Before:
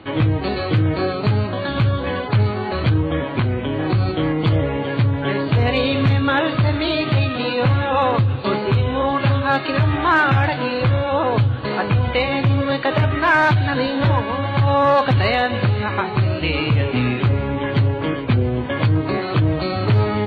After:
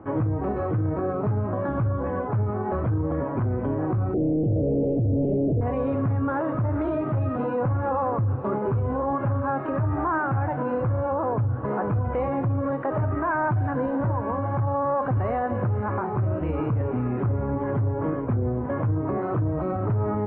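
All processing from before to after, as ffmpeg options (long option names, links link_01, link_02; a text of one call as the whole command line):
ffmpeg -i in.wav -filter_complex "[0:a]asettb=1/sr,asplit=3[link_01][link_02][link_03];[link_01]atrim=end=4.144[link_04];[link_02]atrim=start=4.14:end=5.61,asetpts=PTS-STARTPTS,afade=type=in:duration=0.004:curve=qsin,afade=type=out:start_time=1.466:duration=0.004:curve=qsin,tiltshelf=frequency=640:gain=9.5,asplit=2[link_05][link_06];[link_06]highpass=frequency=720:poles=1,volume=33dB,asoftclip=type=tanh:threshold=-0.5dB[link_07];[link_05][link_07]amix=inputs=2:normalize=0,lowpass=frequency=1100:poles=1,volume=-6dB,asuperstop=centerf=1300:order=8:qfactor=0.62[link_08];[link_03]atrim=start=5.606[link_09];[link_04][link_08]acrossfade=duration=0.004:curve1=hsin:curve2=qsin[link_10];[link_10][link_09]acrossfade=duration=0.004:curve1=qsin:curve2=hsin,lowpass=frequency=1300:width=0.5412,lowpass=frequency=1300:width=1.3066,alimiter=limit=-16dB:level=0:latency=1:release=58,volume=-2dB" out.wav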